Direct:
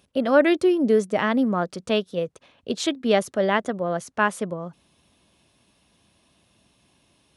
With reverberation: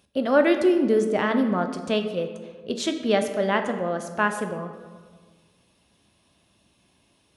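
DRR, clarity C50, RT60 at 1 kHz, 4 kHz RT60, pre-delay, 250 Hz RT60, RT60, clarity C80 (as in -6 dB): 6.0 dB, 8.5 dB, 1.5 s, 0.90 s, 10 ms, 1.8 s, 1.6 s, 10.0 dB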